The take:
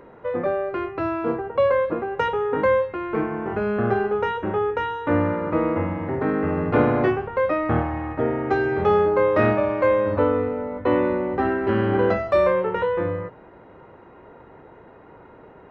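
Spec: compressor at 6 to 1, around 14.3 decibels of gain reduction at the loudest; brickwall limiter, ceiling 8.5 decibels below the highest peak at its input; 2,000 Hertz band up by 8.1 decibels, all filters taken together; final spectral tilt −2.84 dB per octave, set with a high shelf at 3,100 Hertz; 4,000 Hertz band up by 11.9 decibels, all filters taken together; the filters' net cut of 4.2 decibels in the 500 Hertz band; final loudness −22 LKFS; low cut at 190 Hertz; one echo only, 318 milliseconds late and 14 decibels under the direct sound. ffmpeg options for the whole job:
ffmpeg -i in.wav -af "highpass=190,equalizer=frequency=500:width_type=o:gain=-5.5,equalizer=frequency=2000:width_type=o:gain=6.5,highshelf=frequency=3100:gain=7,equalizer=frequency=4000:width_type=o:gain=9,acompressor=threshold=-31dB:ratio=6,alimiter=level_in=1.5dB:limit=-24dB:level=0:latency=1,volume=-1.5dB,aecho=1:1:318:0.2,volume=12.5dB" out.wav

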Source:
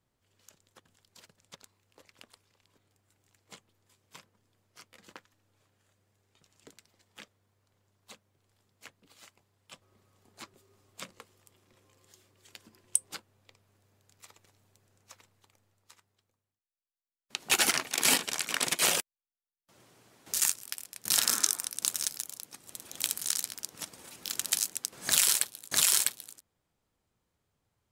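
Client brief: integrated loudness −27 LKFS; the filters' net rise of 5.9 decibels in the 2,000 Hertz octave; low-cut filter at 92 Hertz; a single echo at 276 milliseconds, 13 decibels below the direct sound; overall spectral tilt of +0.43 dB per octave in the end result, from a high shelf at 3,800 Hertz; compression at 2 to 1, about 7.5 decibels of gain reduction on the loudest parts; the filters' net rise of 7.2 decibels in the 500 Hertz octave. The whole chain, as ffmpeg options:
ffmpeg -i in.wav -af "highpass=92,equalizer=frequency=500:width_type=o:gain=8.5,equalizer=frequency=2000:width_type=o:gain=5.5,highshelf=frequency=3800:gain=5,acompressor=threshold=-29dB:ratio=2,aecho=1:1:276:0.224,volume=3dB" out.wav

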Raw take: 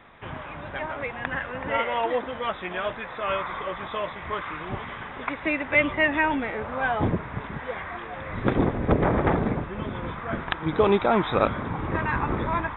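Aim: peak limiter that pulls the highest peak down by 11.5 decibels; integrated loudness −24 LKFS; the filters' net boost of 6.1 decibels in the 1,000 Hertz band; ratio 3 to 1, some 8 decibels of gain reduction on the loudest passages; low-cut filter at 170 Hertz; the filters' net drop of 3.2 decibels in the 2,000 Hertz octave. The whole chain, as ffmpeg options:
ffmpeg -i in.wav -af "highpass=170,equalizer=frequency=1000:width_type=o:gain=9,equalizer=frequency=2000:width_type=o:gain=-7,acompressor=threshold=-24dB:ratio=3,volume=6.5dB,alimiter=limit=-13.5dB:level=0:latency=1" out.wav

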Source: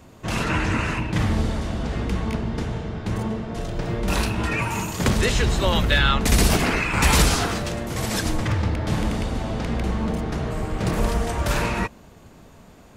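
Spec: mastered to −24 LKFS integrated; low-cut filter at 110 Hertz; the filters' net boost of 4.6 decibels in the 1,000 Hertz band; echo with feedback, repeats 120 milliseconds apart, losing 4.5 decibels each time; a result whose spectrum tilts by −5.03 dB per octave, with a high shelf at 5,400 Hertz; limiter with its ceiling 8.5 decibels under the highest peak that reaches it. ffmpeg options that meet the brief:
ffmpeg -i in.wav -af "highpass=110,equalizer=frequency=1000:width_type=o:gain=6,highshelf=frequency=5400:gain=-6,alimiter=limit=-14dB:level=0:latency=1,aecho=1:1:120|240|360|480|600|720|840|960|1080:0.596|0.357|0.214|0.129|0.0772|0.0463|0.0278|0.0167|0.01,volume=-0.5dB" out.wav

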